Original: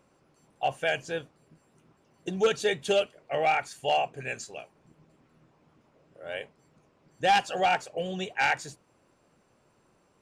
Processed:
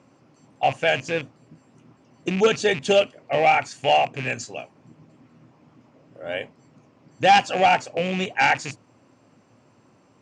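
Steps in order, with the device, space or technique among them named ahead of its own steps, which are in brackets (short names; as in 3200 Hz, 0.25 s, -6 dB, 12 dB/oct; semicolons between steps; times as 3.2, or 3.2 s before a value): car door speaker with a rattle (rattling part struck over -45 dBFS, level -28 dBFS; speaker cabinet 100–7300 Hz, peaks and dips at 110 Hz +10 dB, 260 Hz +8 dB, 420 Hz -3 dB, 1500 Hz -3 dB, 3700 Hz -4 dB); gain +7.5 dB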